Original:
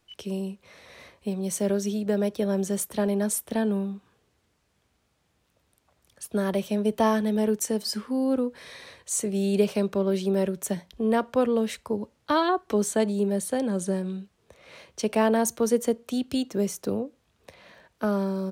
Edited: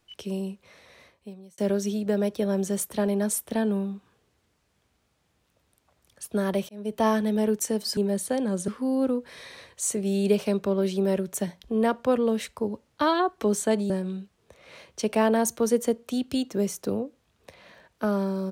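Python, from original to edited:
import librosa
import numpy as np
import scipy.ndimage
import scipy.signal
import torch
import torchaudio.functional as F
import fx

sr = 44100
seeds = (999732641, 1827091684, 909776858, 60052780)

y = fx.edit(x, sr, fx.fade_out_span(start_s=0.49, length_s=1.09),
    fx.fade_in_span(start_s=6.69, length_s=0.39),
    fx.move(start_s=13.19, length_s=0.71, to_s=7.97), tone=tone)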